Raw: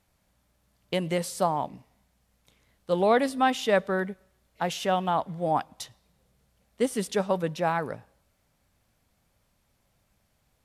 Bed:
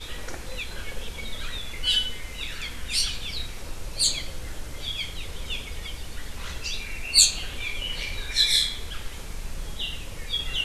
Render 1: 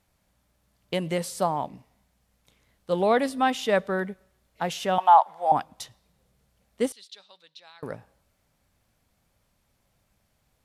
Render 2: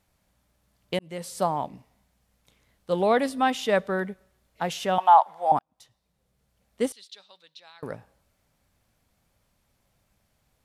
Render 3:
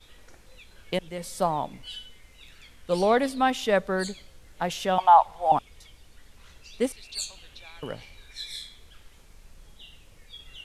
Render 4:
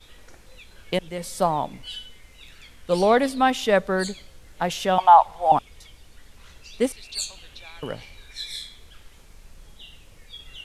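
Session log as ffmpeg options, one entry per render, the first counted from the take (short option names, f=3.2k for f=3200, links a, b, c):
-filter_complex "[0:a]asettb=1/sr,asplit=3[a][b][c];[a]atrim=end=4.984[d];[b]atrim=start=4.98:end=5.52,asetpts=PTS-STARTPTS,afade=t=in:d=0.004:c=qsin,afade=t=out:st=0.536:d=0.004:c=qsin,highpass=f=840:t=q:w=5.1[e];[c]atrim=start=5.516[f];[d][e]acrossfade=d=0.004:c1=hsin:c2=qsin[g];[g][f]acrossfade=d=0.004:c1=qsin:c2=hsin,asettb=1/sr,asplit=3[h][i][j];[h]atrim=end=6.924[k];[i]atrim=start=6.92:end=7.83,asetpts=PTS-STARTPTS,afade=t=in:d=0.004:c=qsin,afade=t=out:st=0.906:d=0.004:c=qsin,bandpass=f=4k:t=q:w=5.3[l];[j]atrim=start=7.826[m];[k][l]acrossfade=d=0.004:c1=hsin:c2=qsin[n];[n][m]acrossfade=d=0.004:c1=qsin:c2=hsin"
-filter_complex "[0:a]asplit=3[a][b][c];[a]atrim=end=0.99,asetpts=PTS-STARTPTS,afade=t=out:st=0.986:d=0.004:c=hsin[d];[b]atrim=start=0.99:end=5.59,asetpts=PTS-STARTPTS,afade=t=in:d=0.44,afade=t=out:st=4.596:d=0.004:c=hsin[e];[c]atrim=start=5.59,asetpts=PTS-STARTPTS,afade=t=in:d=1.29[f];[d][e][f]concat=n=3:v=0:a=1"
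-filter_complex "[1:a]volume=-17dB[a];[0:a][a]amix=inputs=2:normalize=0"
-af "volume=3.5dB,alimiter=limit=-3dB:level=0:latency=1"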